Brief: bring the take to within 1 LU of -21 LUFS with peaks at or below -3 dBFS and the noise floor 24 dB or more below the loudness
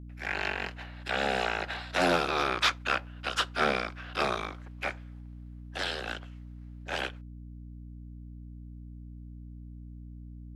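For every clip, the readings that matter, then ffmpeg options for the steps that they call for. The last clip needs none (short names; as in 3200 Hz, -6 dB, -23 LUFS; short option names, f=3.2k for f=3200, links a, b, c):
hum 60 Hz; harmonics up to 300 Hz; hum level -42 dBFS; loudness -31.0 LUFS; peak -15.5 dBFS; loudness target -21.0 LUFS
-> -af "bandreject=f=60:t=h:w=4,bandreject=f=120:t=h:w=4,bandreject=f=180:t=h:w=4,bandreject=f=240:t=h:w=4,bandreject=f=300:t=h:w=4"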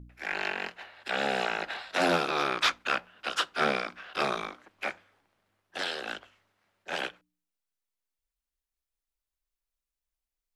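hum none; loudness -30.5 LUFS; peak -15.5 dBFS; loudness target -21.0 LUFS
-> -af "volume=9.5dB"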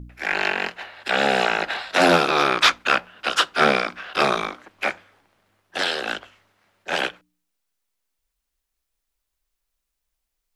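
loudness -21.0 LUFS; peak -6.0 dBFS; noise floor -80 dBFS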